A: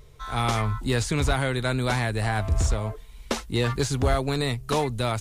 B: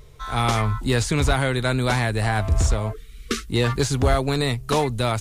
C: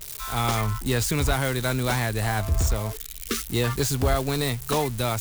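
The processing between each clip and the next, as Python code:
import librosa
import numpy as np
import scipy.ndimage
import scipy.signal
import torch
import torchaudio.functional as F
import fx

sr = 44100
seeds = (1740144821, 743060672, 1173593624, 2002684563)

y1 = fx.spec_erase(x, sr, start_s=2.93, length_s=0.56, low_hz=490.0, high_hz=1100.0)
y1 = y1 * librosa.db_to_amplitude(3.5)
y2 = y1 + 0.5 * 10.0 ** (-20.0 / 20.0) * np.diff(np.sign(y1), prepend=np.sign(y1[:1]))
y2 = y2 * librosa.db_to_amplitude(-3.5)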